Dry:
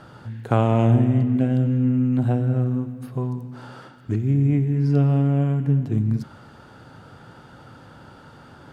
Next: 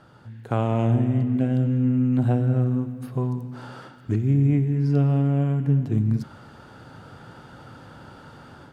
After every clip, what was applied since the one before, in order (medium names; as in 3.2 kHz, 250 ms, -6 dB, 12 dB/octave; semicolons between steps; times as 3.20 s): level rider gain up to 8.5 dB; trim -7.5 dB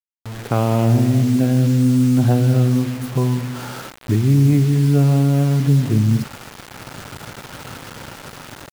in parallel at -2 dB: peak limiter -20 dBFS, peak gain reduction 10 dB; on the sum: bit crusher 6-bit; trim +3 dB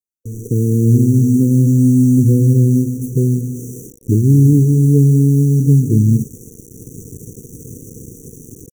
brick-wall FIR band-stop 500–5700 Hz; trim +4 dB